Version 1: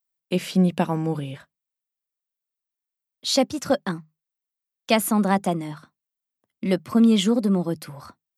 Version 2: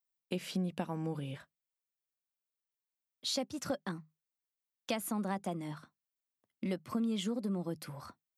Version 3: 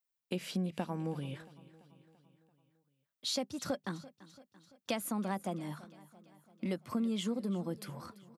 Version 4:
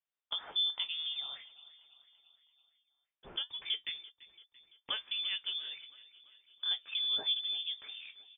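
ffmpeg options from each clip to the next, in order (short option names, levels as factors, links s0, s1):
-af "acompressor=threshold=0.0398:ratio=3,volume=0.473"
-af "aecho=1:1:338|676|1014|1352|1690:0.112|0.064|0.0365|0.0208|0.0118"
-af "flanger=delay=4.2:depth=7.3:regen=62:speed=0.69:shape=sinusoidal,lowpass=f=3100:t=q:w=0.5098,lowpass=f=3100:t=q:w=0.6013,lowpass=f=3100:t=q:w=0.9,lowpass=f=3100:t=q:w=2.563,afreqshift=-3700,volume=1.5"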